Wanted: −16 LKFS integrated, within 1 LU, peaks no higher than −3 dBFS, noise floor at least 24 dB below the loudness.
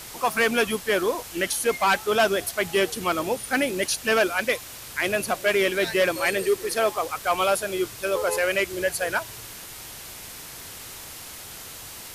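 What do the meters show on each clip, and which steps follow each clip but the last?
background noise floor −40 dBFS; target noise floor −48 dBFS; integrated loudness −24.0 LKFS; sample peak −12.5 dBFS; target loudness −16.0 LKFS
→ broadband denoise 8 dB, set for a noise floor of −40 dBFS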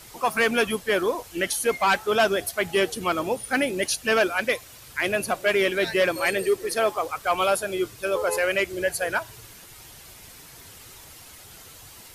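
background noise floor −47 dBFS; target noise floor −48 dBFS
→ broadband denoise 6 dB, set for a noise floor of −47 dBFS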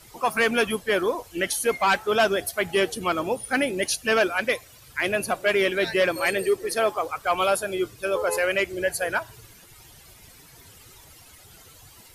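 background noise floor −51 dBFS; integrated loudness −24.0 LKFS; sample peak −12.5 dBFS; target loudness −16.0 LKFS
→ level +8 dB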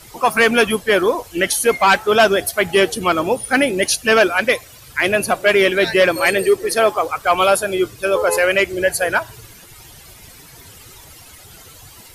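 integrated loudness −16.0 LKFS; sample peak −4.5 dBFS; background noise floor −43 dBFS

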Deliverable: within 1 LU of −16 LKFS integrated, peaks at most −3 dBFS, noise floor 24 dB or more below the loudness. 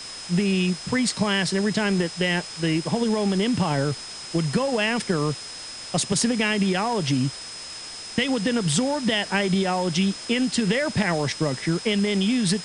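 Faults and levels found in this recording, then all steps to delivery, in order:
interfering tone 5,100 Hz; level of the tone −37 dBFS; background noise floor −37 dBFS; target noise floor −48 dBFS; integrated loudness −23.5 LKFS; sample peak −8.5 dBFS; target loudness −16.0 LKFS
→ notch filter 5,100 Hz, Q 30
noise reduction from a noise print 11 dB
level +7.5 dB
brickwall limiter −3 dBFS

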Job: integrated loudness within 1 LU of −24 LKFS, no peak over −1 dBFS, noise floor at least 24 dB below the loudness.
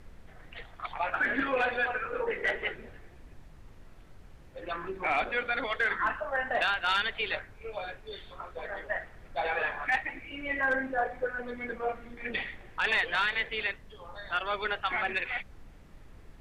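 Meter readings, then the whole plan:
background noise floor −52 dBFS; target noise floor −55 dBFS; integrated loudness −31.0 LKFS; sample peak −18.5 dBFS; target loudness −24.0 LKFS
→ noise reduction from a noise print 6 dB
level +7 dB

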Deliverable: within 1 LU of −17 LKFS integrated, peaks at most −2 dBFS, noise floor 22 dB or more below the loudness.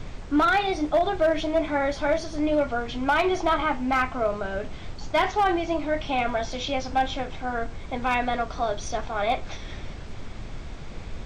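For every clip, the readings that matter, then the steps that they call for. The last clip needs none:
share of clipped samples 0.6%; peaks flattened at −15.0 dBFS; background noise floor −38 dBFS; target noise floor −48 dBFS; integrated loudness −25.5 LKFS; sample peak −15.0 dBFS; target loudness −17.0 LKFS
→ clipped peaks rebuilt −15 dBFS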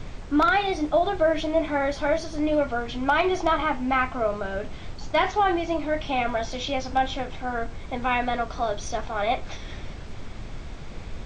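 share of clipped samples 0.0%; background noise floor −38 dBFS; target noise floor −48 dBFS
→ noise reduction from a noise print 10 dB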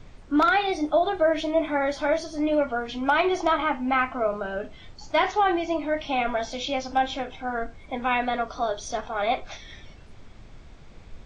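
background noise floor −47 dBFS; target noise floor −48 dBFS
→ noise reduction from a noise print 6 dB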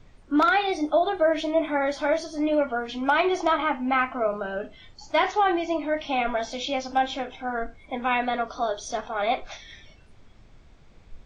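background noise floor −52 dBFS; integrated loudness −25.5 LKFS; sample peak −6.5 dBFS; target loudness −17.0 LKFS
→ level +8.5 dB
brickwall limiter −2 dBFS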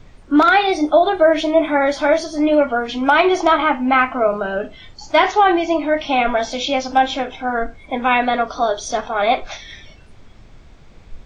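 integrated loudness −17.0 LKFS; sample peak −2.0 dBFS; background noise floor −43 dBFS

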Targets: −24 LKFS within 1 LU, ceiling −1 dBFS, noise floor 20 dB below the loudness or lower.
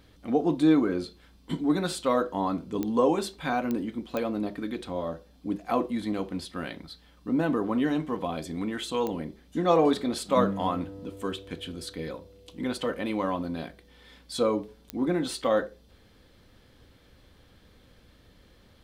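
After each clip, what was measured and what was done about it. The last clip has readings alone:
number of clicks 5; integrated loudness −28.5 LKFS; sample peak −9.0 dBFS; target loudness −24.0 LKFS
→ click removal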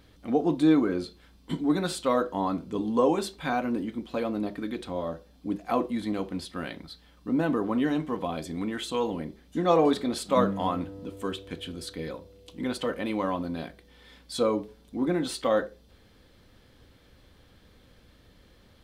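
number of clicks 0; integrated loudness −28.5 LKFS; sample peak −9.0 dBFS; target loudness −24.0 LKFS
→ level +4.5 dB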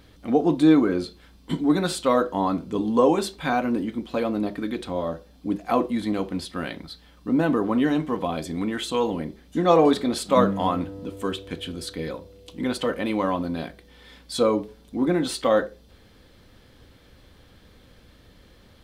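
integrated loudness −24.0 LKFS; sample peak −4.5 dBFS; background noise floor −53 dBFS

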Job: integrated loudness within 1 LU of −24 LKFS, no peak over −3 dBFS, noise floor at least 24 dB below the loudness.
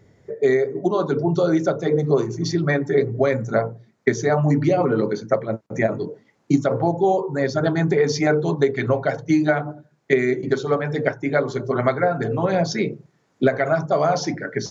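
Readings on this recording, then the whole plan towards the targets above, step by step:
integrated loudness −21.0 LKFS; sample peak −2.5 dBFS; target loudness −24.0 LKFS
→ level −3 dB

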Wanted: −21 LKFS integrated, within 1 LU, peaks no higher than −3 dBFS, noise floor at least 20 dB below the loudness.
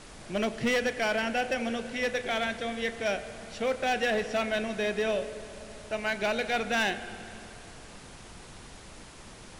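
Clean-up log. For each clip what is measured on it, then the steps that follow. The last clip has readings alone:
share of clipped samples 1.5%; peaks flattened at −22.0 dBFS; background noise floor −48 dBFS; target noise floor −50 dBFS; integrated loudness −30.0 LKFS; sample peak −22.0 dBFS; target loudness −21.0 LKFS
→ clipped peaks rebuilt −22 dBFS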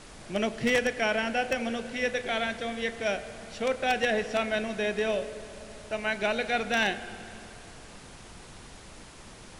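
share of clipped samples 0.0%; background noise floor −48 dBFS; target noise floor −49 dBFS
→ noise reduction from a noise print 6 dB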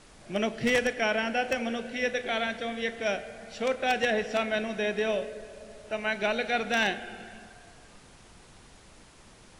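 background noise floor −54 dBFS; integrated loudness −29.0 LKFS; sample peak −13.0 dBFS; target loudness −21.0 LKFS
→ level +8 dB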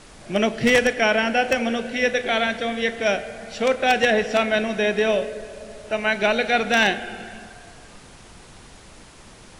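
integrated loudness −21.0 LKFS; sample peak −5.0 dBFS; background noise floor −46 dBFS

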